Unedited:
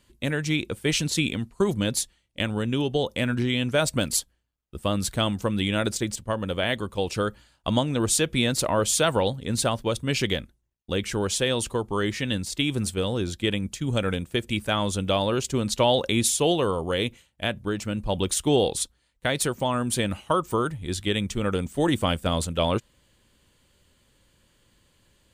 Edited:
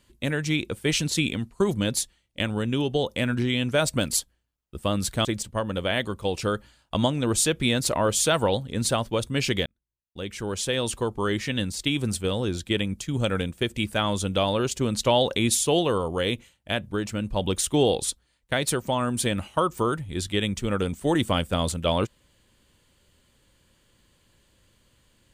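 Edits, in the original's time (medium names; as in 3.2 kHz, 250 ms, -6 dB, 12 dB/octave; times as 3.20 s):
5.25–5.98 s: delete
10.39–11.72 s: fade in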